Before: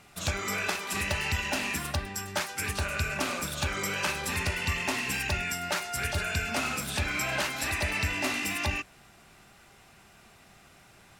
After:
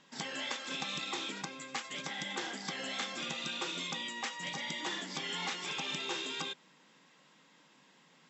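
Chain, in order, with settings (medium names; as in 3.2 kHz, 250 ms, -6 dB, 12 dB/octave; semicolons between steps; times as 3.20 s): FFT band-pass 100–5800 Hz; speed mistake 33 rpm record played at 45 rpm; trim -7 dB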